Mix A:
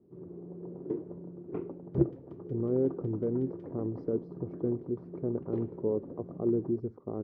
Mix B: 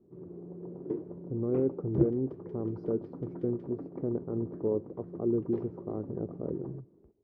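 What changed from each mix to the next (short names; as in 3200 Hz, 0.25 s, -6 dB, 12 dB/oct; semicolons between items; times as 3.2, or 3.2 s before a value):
speech: entry -1.20 s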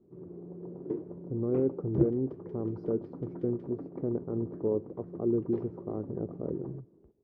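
speech: send on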